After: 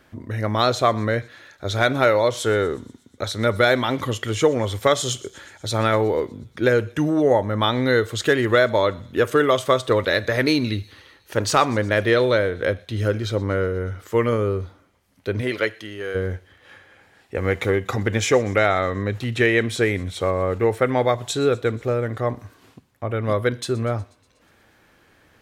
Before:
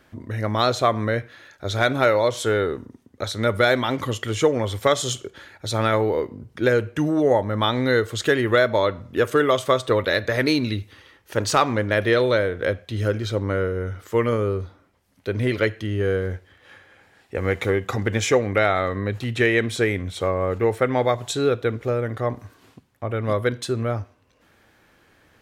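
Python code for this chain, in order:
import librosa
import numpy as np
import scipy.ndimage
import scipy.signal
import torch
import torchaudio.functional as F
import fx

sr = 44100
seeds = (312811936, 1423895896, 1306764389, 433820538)

y = fx.highpass(x, sr, hz=fx.line((15.4, 300.0), (16.14, 1200.0)), slope=6, at=(15.4, 16.14), fade=0.02)
y = fx.echo_wet_highpass(y, sr, ms=121, feedback_pct=68, hz=4300.0, wet_db=-19.0)
y = y * librosa.db_to_amplitude(1.0)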